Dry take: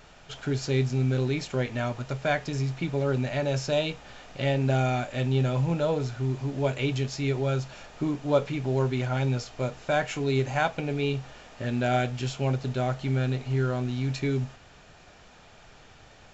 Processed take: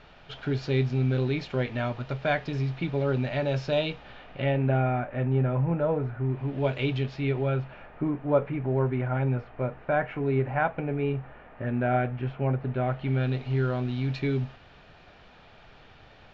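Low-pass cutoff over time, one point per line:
low-pass 24 dB/octave
3.94 s 4.2 kHz
4.94 s 2 kHz
6.21 s 2 kHz
6.76 s 4.2 kHz
8.05 s 2.1 kHz
12.63 s 2.1 kHz
13.38 s 4.2 kHz

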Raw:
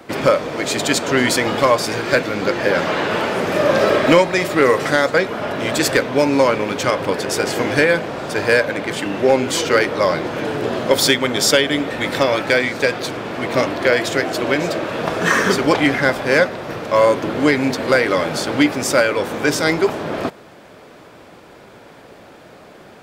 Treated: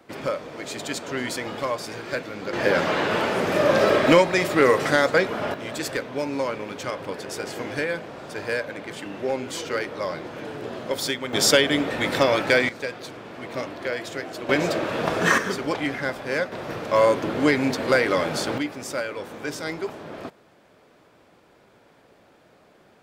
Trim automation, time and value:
-12.5 dB
from 2.53 s -3.5 dB
from 5.54 s -12 dB
from 11.33 s -3 dB
from 12.69 s -13 dB
from 14.49 s -3 dB
from 15.38 s -11 dB
from 16.52 s -4.5 dB
from 18.58 s -13.5 dB

